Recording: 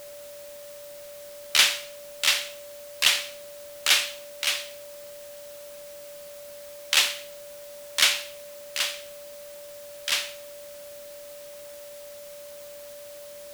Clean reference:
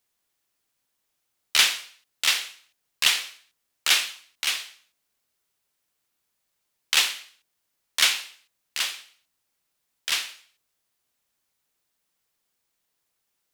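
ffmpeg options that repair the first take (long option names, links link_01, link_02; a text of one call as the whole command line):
ffmpeg -i in.wav -af "bandreject=frequency=580:width=30,afwtdn=0.004" out.wav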